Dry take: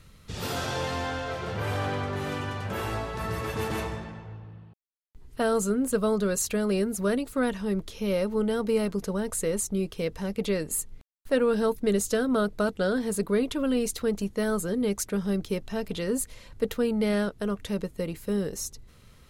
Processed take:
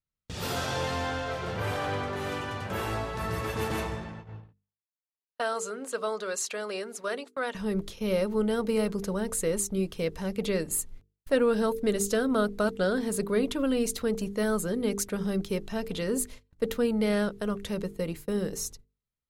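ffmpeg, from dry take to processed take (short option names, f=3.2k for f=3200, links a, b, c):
-filter_complex "[0:a]asettb=1/sr,asplit=3[a][b][c];[a]atrim=end=4.524[d];[b]atrim=start=4.52:end=7.55,asetpts=PTS-STARTPTS,afade=t=in:d=0.004:c=qsin,afade=t=out:st=3.026:d=0.004:c=qsin,highpass=590,lowpass=7.4k[e];[c]atrim=start=7.546[f];[d][e]acrossfade=d=0.004:c1=hsin:c2=qsin[g];[g][f]acrossfade=d=0.004:c1=qsin:c2=hsin,agate=range=-40dB:threshold=-41dB:ratio=16:detection=peak,bandreject=f=50:t=h:w=6,bandreject=f=100:t=h:w=6,bandreject=f=150:t=h:w=6,bandreject=f=200:t=h:w=6,bandreject=f=250:t=h:w=6,bandreject=f=300:t=h:w=6,bandreject=f=350:t=h:w=6,bandreject=f=400:t=h:w=6,bandreject=f=450:t=h:w=6"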